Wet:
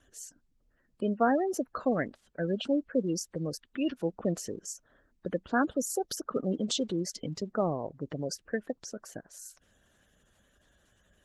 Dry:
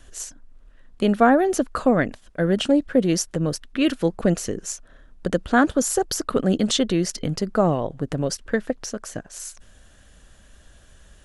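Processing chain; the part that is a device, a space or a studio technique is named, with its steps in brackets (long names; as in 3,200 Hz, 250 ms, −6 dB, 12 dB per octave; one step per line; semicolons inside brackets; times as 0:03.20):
noise-suppressed video call (high-pass filter 140 Hz 6 dB per octave; gate on every frequency bin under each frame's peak −20 dB strong; level −9 dB; Opus 16 kbit/s 48,000 Hz)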